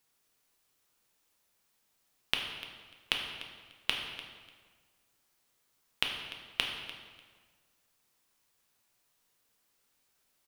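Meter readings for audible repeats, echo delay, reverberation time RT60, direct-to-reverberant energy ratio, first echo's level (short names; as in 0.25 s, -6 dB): 2, 0.296 s, 1.6 s, 1.0 dB, -16.0 dB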